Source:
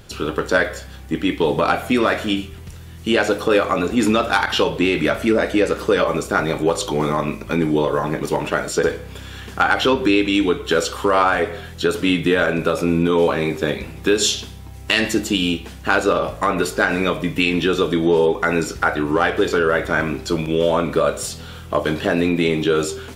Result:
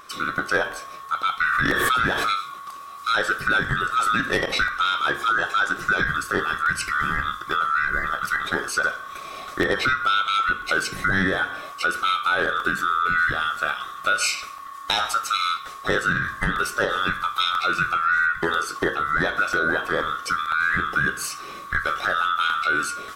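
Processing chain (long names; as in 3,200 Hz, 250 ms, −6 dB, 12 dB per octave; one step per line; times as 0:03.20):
neighbouring bands swapped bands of 1,000 Hz
downward compressor 1.5 to 1, threshold −22 dBFS, peak gain reduction 4 dB
regular buffer underruns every 0.99 s, samples 64, repeat, from 0:00.72
0:01.43–0:02.62: background raised ahead of every attack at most 21 dB per second
level −1.5 dB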